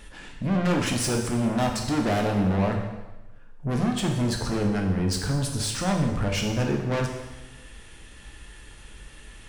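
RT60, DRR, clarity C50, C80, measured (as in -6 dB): 1.1 s, 0.5 dB, 5.0 dB, 7.0 dB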